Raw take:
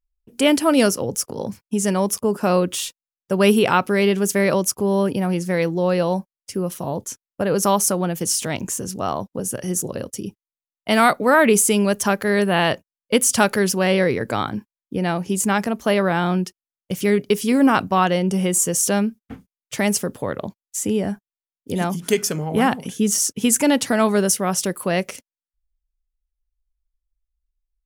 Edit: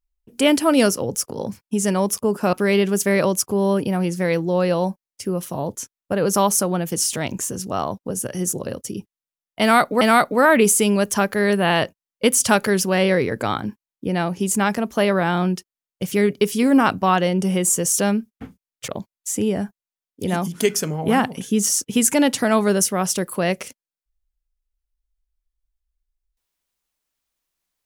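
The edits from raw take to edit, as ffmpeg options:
-filter_complex "[0:a]asplit=4[a][b][c][d];[a]atrim=end=2.532[e];[b]atrim=start=3.818:end=11.302[f];[c]atrim=start=10.898:end=19.772[g];[d]atrim=start=20.358[h];[e][f]acrossfade=d=0.004:c1=hsin:c2=hsin[i];[i][g]acrossfade=d=0.004:c1=hsin:c2=hsin[j];[j][h]acrossfade=d=0.004:c1=hsin:c2=hsin"

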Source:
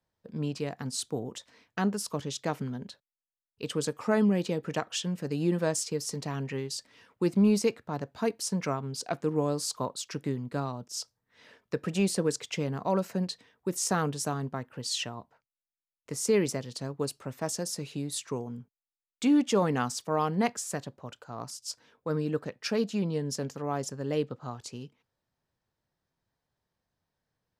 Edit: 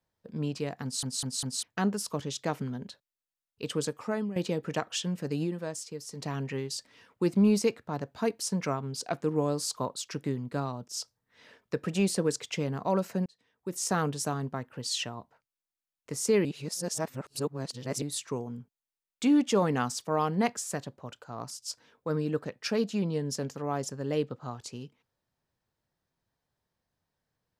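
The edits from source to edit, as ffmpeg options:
-filter_complex "[0:a]asplit=11[a][b][c][d][e][f][g][h][i][j][k];[a]atrim=end=1.032[l];[b]atrim=start=0.828:end=1.032[m];[c]atrim=start=0.828:end=1.032[n];[d]atrim=start=0.828:end=1.032[o];[e]atrim=start=1.628:end=4.36,asetpts=PTS-STARTPTS,afade=t=out:st=2.162:d=0.57:silence=0.188365[p];[f]atrim=start=4.36:end=5.77,asetpts=PTS-STARTPTS,afade=t=in:d=0.004:c=hsin:silence=0.188365,afade=t=out:st=1.07:d=0.34:c=exp:silence=0.398107[q];[g]atrim=start=5.77:end=5.88,asetpts=PTS-STARTPTS,volume=-8dB[r];[h]atrim=start=5.88:end=13.26,asetpts=PTS-STARTPTS,afade=t=in:d=0.34:c=exp:silence=0.398107,afade=t=out:st=7.376:d=0.004:c=hsin[s];[i]atrim=start=13.26:end=16.452,asetpts=PTS-STARTPTS,afade=t=in:d=0.72[t];[j]atrim=start=16.448:end=18.022,asetpts=PTS-STARTPTS,areverse[u];[k]atrim=start=18.018[v];[l][m]acrossfade=d=0.004:c1=hsin:c2=hsin[w];[w][n]acrossfade=d=0.004:c1=hsin:c2=hsin[x];[x][o]acrossfade=d=0.004:c1=hsin:c2=hsin[y];[p][q][r][s][t]concat=n=5:v=0:a=1[z];[y][z]acrossfade=d=0.004:c1=hsin:c2=hsin[aa];[aa][u]acrossfade=d=0.004:c1=hsin:c2=hsin[ab];[ab][v]acrossfade=d=0.004:c1=hsin:c2=hsin"

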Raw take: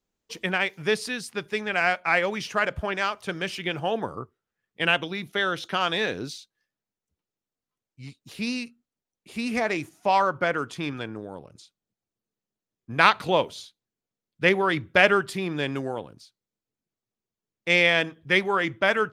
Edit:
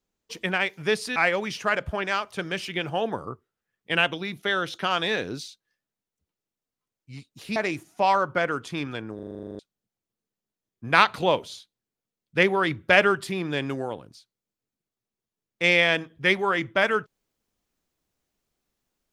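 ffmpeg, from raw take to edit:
-filter_complex "[0:a]asplit=14[a][b][c][d][e][f][g][h][i][j][k][l][m][n];[a]atrim=end=1.162[o];[b]atrim=start=2.058:end=8.462[p];[c]atrim=start=9.618:end=11.252[q];[d]atrim=start=11.208:end=11.252[r];[e]atrim=start=11.208:end=11.252[s];[f]atrim=start=11.208:end=11.252[t];[g]atrim=start=11.208:end=11.252[u];[h]atrim=start=11.208:end=11.252[v];[i]atrim=start=11.208:end=11.252[w];[j]atrim=start=11.208:end=11.252[x];[k]atrim=start=11.208:end=11.252[y];[l]atrim=start=11.208:end=11.252[z];[m]atrim=start=11.208:end=11.252[aa];[n]atrim=start=11.648[ab];[o][p]acrossfade=d=0.004:c1=hsin:c2=hsin[ac];[ac][q]acrossfade=d=0.004:c1=hsin:c2=hsin[ad];[ad][r]acrossfade=d=0.004:c1=hsin:c2=hsin[ae];[ae][s]acrossfade=d=0.004:c1=hsin:c2=hsin[af];[af][t]acrossfade=d=0.004:c1=hsin:c2=hsin[ag];[ag][u]acrossfade=d=0.004:c1=hsin:c2=hsin[ah];[ah][v]acrossfade=d=0.004:c1=hsin:c2=hsin[ai];[ai][w]acrossfade=d=0.004:c1=hsin:c2=hsin[aj];[aj][x]acrossfade=d=0.004:c1=hsin:c2=hsin[ak];[ak][y]acrossfade=d=0.004:c1=hsin:c2=hsin[al];[al][z]acrossfade=d=0.004:c1=hsin:c2=hsin[am];[am][aa]acrossfade=d=0.004:c1=hsin:c2=hsin[an];[an][ab]acrossfade=d=0.004:c1=hsin:c2=hsin"

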